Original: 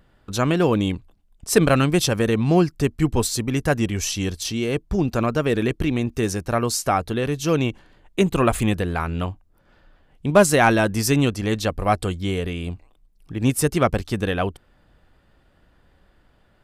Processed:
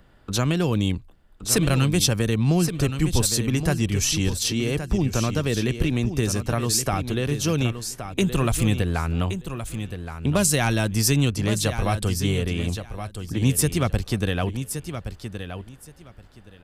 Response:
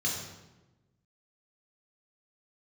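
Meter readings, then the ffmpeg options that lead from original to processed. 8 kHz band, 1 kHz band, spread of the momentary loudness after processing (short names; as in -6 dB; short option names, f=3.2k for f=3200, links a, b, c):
+3.5 dB, -7.0 dB, 12 LU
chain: -filter_complex "[0:a]acrossover=split=170|3000[a][b][c];[b]acompressor=threshold=-30dB:ratio=3[d];[a][d][c]amix=inputs=3:normalize=0,asplit=2[e][f];[f]aecho=0:1:1121|2242|3363:0.335|0.0603|0.0109[g];[e][g]amix=inputs=2:normalize=0,volume=3dB"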